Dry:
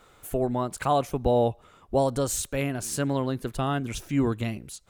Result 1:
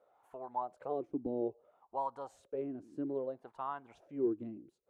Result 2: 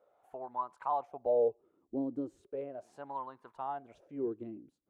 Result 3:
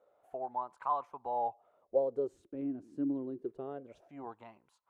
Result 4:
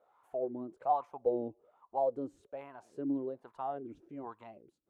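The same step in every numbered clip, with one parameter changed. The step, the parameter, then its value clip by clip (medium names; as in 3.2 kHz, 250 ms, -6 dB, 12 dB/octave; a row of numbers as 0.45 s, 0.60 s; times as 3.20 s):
wah-wah, rate: 0.61 Hz, 0.37 Hz, 0.26 Hz, 1.2 Hz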